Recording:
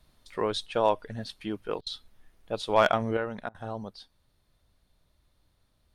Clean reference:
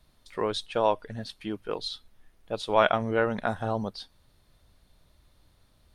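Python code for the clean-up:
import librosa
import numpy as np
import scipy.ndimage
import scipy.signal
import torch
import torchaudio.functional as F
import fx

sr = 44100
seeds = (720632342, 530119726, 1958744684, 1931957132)

y = fx.fix_declip(x, sr, threshold_db=-10.5)
y = fx.fix_interpolate(y, sr, at_s=(1.81, 3.49), length_ms=54.0)
y = fx.gain(y, sr, db=fx.steps((0.0, 0.0), (3.17, 7.0)))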